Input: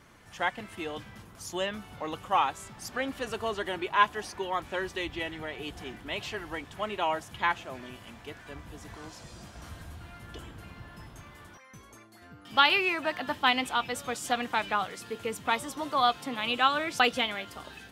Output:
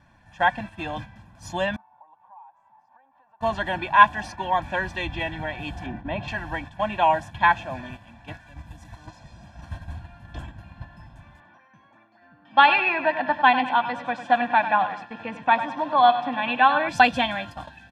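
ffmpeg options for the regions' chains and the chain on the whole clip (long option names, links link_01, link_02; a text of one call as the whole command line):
ffmpeg -i in.wav -filter_complex "[0:a]asettb=1/sr,asplit=3[link_01][link_02][link_03];[link_01]atrim=end=1.764[link_04];[link_02]atrim=start=1.76:end=3.41,asetpts=PTS-STARTPTS,afade=type=in:duration=0.004:curve=qsin,afade=type=out:start_time=1.646:duration=0.004:curve=qsin,acompressor=threshold=-40dB:ratio=8:attack=3.2:release=140:knee=1:detection=peak,bandpass=frequency=910:width_type=q:width=5.7[link_05];[link_03]atrim=start=3.406[link_06];[link_04][link_05]acrossfade=duration=0.004:curve1=hsin:curve2=qsin[link_07];[link_07][link_06]acrossfade=duration=0.004:curve1=qsin:curve2=hsin,asettb=1/sr,asplit=3[link_08][link_09][link_10];[link_08]atrim=end=5.864[link_11];[link_09]atrim=start=5.86:end=6.28,asetpts=PTS-STARTPTS,afade=type=in:duration=0.004:curve=qsin,afade=type=out:start_time=0.416:duration=0.004:curve=qsin,lowpass=frequency=1300:poles=1,equalizer=frequency=290:width=0.52:gain=4.5[link_12];[link_10]atrim=start=6.276[link_13];[link_11][link_12]acrossfade=duration=0.004:curve1=hsin:curve2=qsin[link_14];[link_14][link_13]acrossfade=duration=0.004:curve1=qsin:curve2=hsin,asettb=1/sr,asplit=3[link_15][link_16][link_17];[link_15]atrim=end=8.344[link_18];[link_16]atrim=start=8.34:end=9.07,asetpts=PTS-STARTPTS,afade=type=in:duration=0.004:curve=qsin,afade=type=out:start_time=0.726:duration=0.004:curve=qsin,acrossover=split=180|3000[link_19][link_20][link_21];[link_20]acompressor=threshold=-49dB:ratio=2:attack=3.2:release=140:knee=2.83:detection=peak[link_22];[link_19][link_22][link_21]amix=inputs=3:normalize=0,highshelf=frequency=5600:gain=9[link_23];[link_17]atrim=start=9.066[link_24];[link_18][link_23]acrossfade=duration=0.004:curve1=hsin:curve2=qsin[link_25];[link_25][link_24]acrossfade=duration=0.004:curve1=qsin:curve2=hsin,asettb=1/sr,asplit=3[link_26][link_27][link_28];[link_26]atrim=end=11.404[link_29];[link_27]atrim=start=11.4:end=16.89,asetpts=PTS-STARTPTS,afade=type=in:duration=0.004:curve=qsin,afade=type=out:start_time=5.486:duration=0.004:curve=qsin,highpass=230,lowpass=2900,aecho=1:1:98|196|294|392:0.266|0.114|0.0492|0.0212,atrim=end_sample=242109[link_30];[link_28]atrim=start=16.886[link_31];[link_29][link_30]acrossfade=duration=0.004:curve1=hsin:curve2=qsin[link_32];[link_32][link_31]acrossfade=duration=0.004:curve1=qsin:curve2=hsin,agate=range=-9dB:threshold=-43dB:ratio=16:detection=peak,aemphasis=mode=reproduction:type=75fm,aecho=1:1:1.2:0.95,volume=5.5dB" out.wav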